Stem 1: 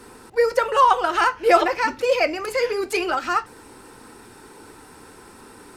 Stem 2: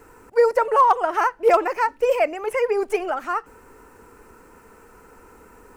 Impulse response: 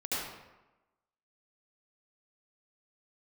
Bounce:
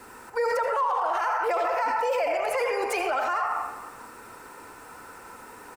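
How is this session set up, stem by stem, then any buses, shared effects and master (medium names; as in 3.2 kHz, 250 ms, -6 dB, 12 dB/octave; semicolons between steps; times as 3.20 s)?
-6.0 dB, 0.00 s, no send, none
+1.5 dB, 0.4 ms, polarity flipped, send -5 dB, steep high-pass 560 Hz 36 dB/octave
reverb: on, RT60 1.1 s, pre-delay 66 ms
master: peak limiter -18.5 dBFS, peak gain reduction 19.5 dB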